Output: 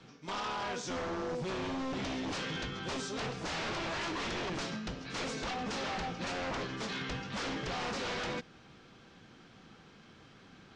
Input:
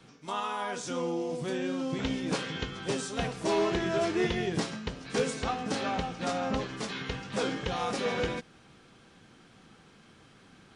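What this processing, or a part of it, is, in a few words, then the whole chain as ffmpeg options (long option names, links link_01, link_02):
synthesiser wavefolder: -af "aeval=exprs='0.0266*(abs(mod(val(0)/0.0266+3,4)-2)-1)':channel_layout=same,lowpass=frequency=6500:width=0.5412,lowpass=frequency=6500:width=1.3066"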